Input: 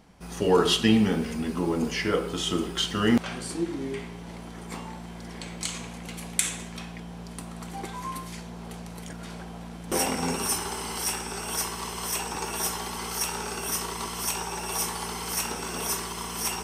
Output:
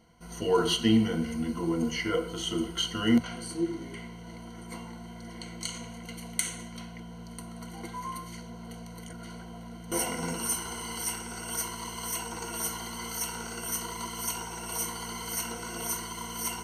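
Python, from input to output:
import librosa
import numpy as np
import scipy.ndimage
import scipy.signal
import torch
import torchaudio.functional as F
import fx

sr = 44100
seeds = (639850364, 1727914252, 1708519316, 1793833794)

y = fx.ripple_eq(x, sr, per_octave=1.9, db=16)
y = F.gain(torch.from_numpy(y), -7.5).numpy()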